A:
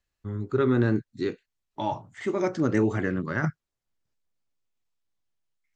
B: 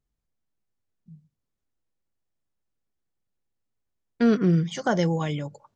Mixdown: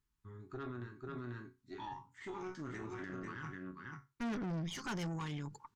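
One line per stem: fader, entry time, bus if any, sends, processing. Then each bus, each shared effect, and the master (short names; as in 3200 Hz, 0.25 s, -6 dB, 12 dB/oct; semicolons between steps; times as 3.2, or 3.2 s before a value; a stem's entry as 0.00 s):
0.0 dB, 0.00 s, no send, echo send -6.5 dB, resonator bank F#2 sus4, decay 0.25 s; auto duck -16 dB, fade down 0.50 s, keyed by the second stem
+0.5 dB, 0.00 s, no send, no echo send, dry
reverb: off
echo: echo 0.49 s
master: EQ curve 410 Hz 0 dB, 590 Hz -29 dB, 920 Hz +6 dB, 2600 Hz +2 dB; tube stage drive 28 dB, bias 0.7; limiter -34.5 dBFS, peak gain reduction 10 dB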